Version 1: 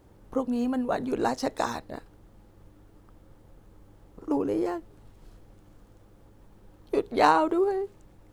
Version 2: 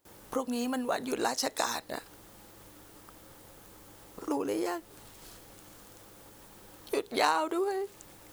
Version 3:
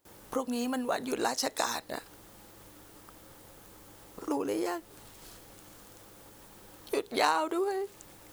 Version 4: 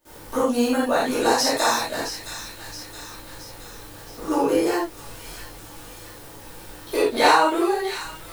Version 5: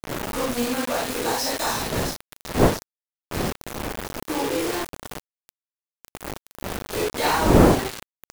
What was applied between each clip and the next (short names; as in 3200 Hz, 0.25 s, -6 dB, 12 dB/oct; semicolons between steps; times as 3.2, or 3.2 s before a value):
gate with hold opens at -48 dBFS; tilt +3.5 dB/oct; compressor 2:1, threshold -42 dBFS, peak gain reduction 14.5 dB; gain +7.5 dB
nothing audible
thin delay 0.67 s, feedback 53%, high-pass 1800 Hz, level -9.5 dB; reverb, pre-delay 3 ms, DRR -11 dB
one diode to ground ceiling -14 dBFS; wind noise 470 Hz -22 dBFS; bit-crush 4-bit; gain -4.5 dB